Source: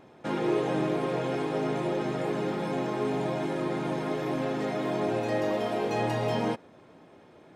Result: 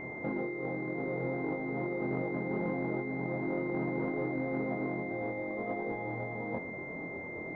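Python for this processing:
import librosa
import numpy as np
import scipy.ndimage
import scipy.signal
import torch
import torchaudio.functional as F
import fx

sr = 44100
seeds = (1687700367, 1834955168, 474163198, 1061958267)

y = fx.over_compress(x, sr, threshold_db=-38.0, ratio=-1.0)
y = fx.doubler(y, sr, ms=23.0, db=-2.5)
y = fx.pwm(y, sr, carrier_hz=2100.0)
y = y * librosa.db_to_amplitude(1.0)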